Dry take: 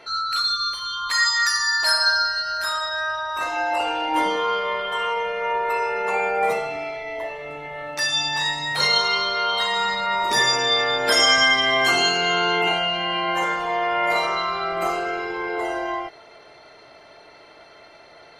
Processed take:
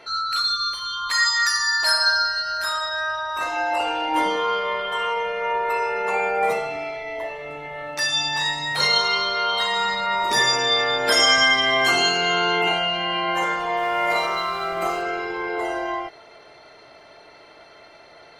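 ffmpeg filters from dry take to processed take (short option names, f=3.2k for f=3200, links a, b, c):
-filter_complex "[0:a]asettb=1/sr,asplit=3[a][b][c];[a]atrim=end=13.774[d];[b]atrim=start=13.77:end=15.02,asetpts=PTS-STARTPTS,afade=t=in:d=0.004:c=qsin,afade=t=out:st=1.246:d=0.004:c=qsin,aeval=exprs='sgn(val(0))*max(abs(val(0))-0.00596,0)':c=same[e];[c]atrim=start=15.016[f];[d][e]acrossfade=d=0.004:c1=hsin:c2=qsin[g];[g][f]acrossfade=d=0.004:c1=qsin:c2=hsin"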